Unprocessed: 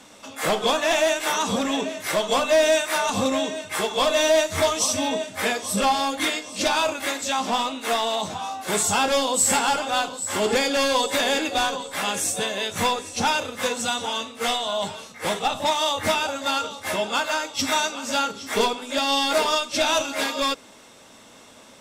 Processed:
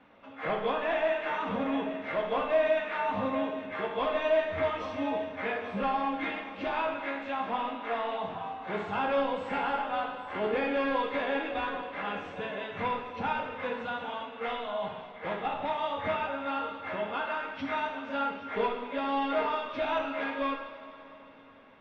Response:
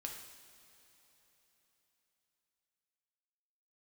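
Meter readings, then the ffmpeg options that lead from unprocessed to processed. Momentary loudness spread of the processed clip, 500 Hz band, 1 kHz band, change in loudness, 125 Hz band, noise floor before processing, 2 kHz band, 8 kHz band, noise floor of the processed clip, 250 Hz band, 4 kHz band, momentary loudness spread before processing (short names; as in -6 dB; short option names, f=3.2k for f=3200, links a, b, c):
7 LU, -7.0 dB, -7.0 dB, -9.0 dB, -8.0 dB, -48 dBFS, -8.5 dB, under -40 dB, -49 dBFS, -6.5 dB, -19.0 dB, 7 LU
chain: -filter_complex "[0:a]lowpass=f=2.5k:w=0.5412,lowpass=f=2.5k:w=1.3066[a];[1:a]atrim=start_sample=2205[b];[a][b]afir=irnorm=-1:irlink=0,volume=-5dB"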